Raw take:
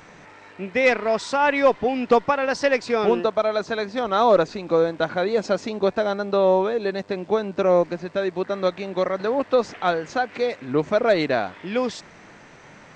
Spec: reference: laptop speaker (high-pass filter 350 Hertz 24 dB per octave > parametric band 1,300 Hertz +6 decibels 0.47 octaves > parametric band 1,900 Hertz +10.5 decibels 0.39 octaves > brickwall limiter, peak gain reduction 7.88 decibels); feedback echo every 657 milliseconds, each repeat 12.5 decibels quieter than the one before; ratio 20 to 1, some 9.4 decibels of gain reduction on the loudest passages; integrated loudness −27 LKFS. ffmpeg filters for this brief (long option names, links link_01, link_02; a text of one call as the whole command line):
ffmpeg -i in.wav -af "acompressor=threshold=-20dB:ratio=20,highpass=frequency=350:width=0.5412,highpass=frequency=350:width=1.3066,equalizer=frequency=1300:width_type=o:width=0.47:gain=6,equalizer=frequency=1900:width_type=o:width=0.39:gain=10.5,aecho=1:1:657|1314|1971:0.237|0.0569|0.0137,alimiter=limit=-16dB:level=0:latency=1" out.wav